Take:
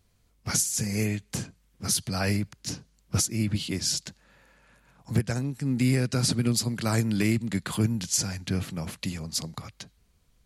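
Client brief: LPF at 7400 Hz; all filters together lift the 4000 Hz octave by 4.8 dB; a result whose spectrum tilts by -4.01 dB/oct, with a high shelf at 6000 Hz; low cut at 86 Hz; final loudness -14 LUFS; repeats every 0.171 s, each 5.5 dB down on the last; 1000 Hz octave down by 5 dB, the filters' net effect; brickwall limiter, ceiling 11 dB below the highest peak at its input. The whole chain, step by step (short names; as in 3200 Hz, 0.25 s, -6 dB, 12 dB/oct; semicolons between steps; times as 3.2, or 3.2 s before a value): HPF 86 Hz; LPF 7400 Hz; bell 1000 Hz -8 dB; bell 4000 Hz +5.5 dB; high shelf 6000 Hz +4 dB; limiter -21.5 dBFS; feedback echo 0.171 s, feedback 53%, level -5.5 dB; gain +16 dB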